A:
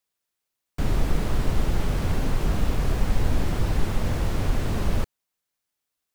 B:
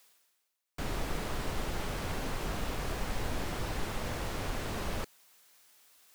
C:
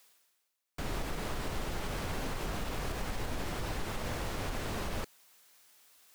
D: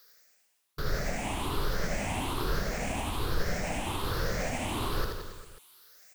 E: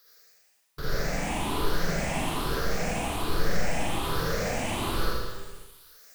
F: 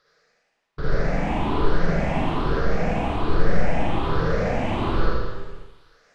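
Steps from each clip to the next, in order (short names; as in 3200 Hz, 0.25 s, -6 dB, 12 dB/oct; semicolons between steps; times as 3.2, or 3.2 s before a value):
low shelf 300 Hz -12 dB; reverse; upward compressor, threshold -39 dBFS; reverse; gain -3 dB
limiter -26 dBFS, peak gain reduction 5 dB
moving spectral ripple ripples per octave 0.59, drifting +1.2 Hz, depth 16 dB; reverse bouncing-ball echo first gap 80 ms, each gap 1.15×, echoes 5
Schroeder reverb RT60 0.8 s, DRR -4 dB; gain -2 dB
tape spacing loss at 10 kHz 32 dB; gain +8 dB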